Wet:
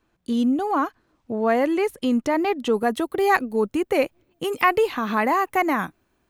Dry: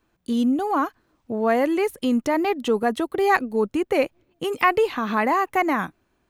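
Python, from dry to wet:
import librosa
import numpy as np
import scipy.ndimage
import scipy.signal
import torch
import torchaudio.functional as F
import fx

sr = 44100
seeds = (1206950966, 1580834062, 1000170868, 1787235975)

y = fx.high_shelf(x, sr, hz=11000.0, db=fx.steps((0.0, -6.5), (2.72, 7.0)))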